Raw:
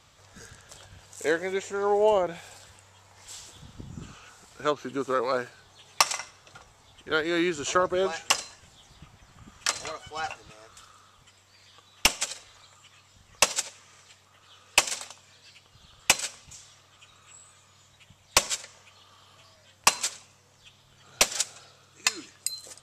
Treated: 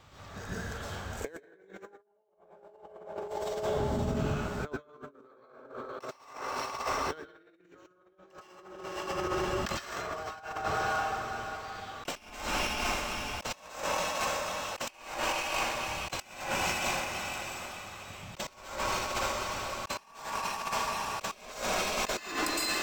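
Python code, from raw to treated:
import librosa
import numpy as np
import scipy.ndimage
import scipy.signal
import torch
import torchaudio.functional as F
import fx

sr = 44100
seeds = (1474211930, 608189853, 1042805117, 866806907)

p1 = fx.high_shelf(x, sr, hz=2800.0, db=-9.5)
p2 = p1 + fx.echo_diffused(p1, sr, ms=538, feedback_pct=40, wet_db=-9.0, dry=0)
p3 = fx.rev_plate(p2, sr, seeds[0], rt60_s=1.4, hf_ratio=0.5, predelay_ms=105, drr_db=-8.5)
p4 = fx.over_compress(p3, sr, threshold_db=-33.0, ratio=-0.5)
p5 = np.interp(np.arange(len(p4)), np.arange(len(p4))[::2], p4[::2])
y = p5 * 10.0 ** (-4.0 / 20.0)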